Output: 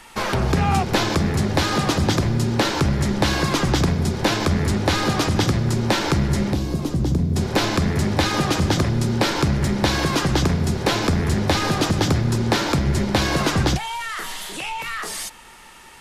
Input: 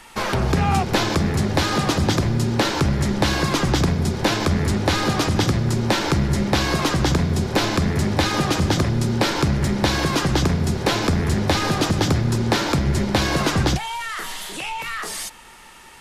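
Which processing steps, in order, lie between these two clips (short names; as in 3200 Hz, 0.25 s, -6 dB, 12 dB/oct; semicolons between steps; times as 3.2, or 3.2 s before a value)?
6.53–7.36 EQ curve 260 Hz 0 dB, 1600 Hz -19 dB, 12000 Hz -7 dB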